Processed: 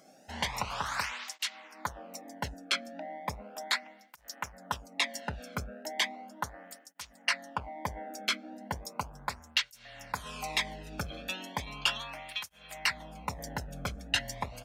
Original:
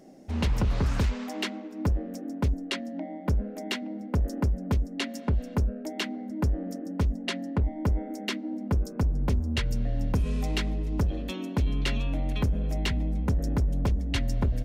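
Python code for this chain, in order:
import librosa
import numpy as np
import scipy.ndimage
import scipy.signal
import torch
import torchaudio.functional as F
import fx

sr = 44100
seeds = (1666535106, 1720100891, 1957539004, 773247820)

y = fx.curve_eq(x, sr, hz=(150.0, 360.0, 890.0), db=(0, -11, 10))
y = fx.flanger_cancel(y, sr, hz=0.36, depth_ms=1.1)
y = F.gain(torch.from_numpy(y), -3.0).numpy()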